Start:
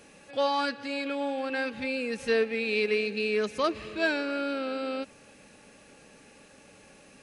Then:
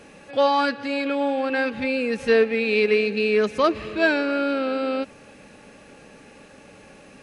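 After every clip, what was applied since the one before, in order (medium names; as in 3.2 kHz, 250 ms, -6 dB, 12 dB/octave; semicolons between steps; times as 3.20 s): treble shelf 4.1 kHz -9 dB; trim +8 dB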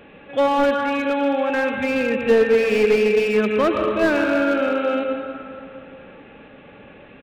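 reverberation RT60 2.5 s, pre-delay 88 ms, DRR 3 dB; resampled via 8 kHz; slew-rate limiter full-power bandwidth 130 Hz; trim +1.5 dB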